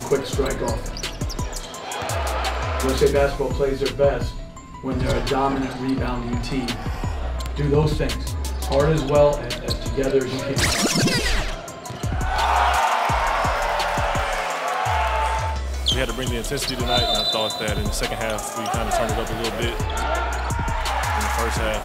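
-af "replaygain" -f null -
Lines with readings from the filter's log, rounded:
track_gain = +2.0 dB
track_peak = 0.415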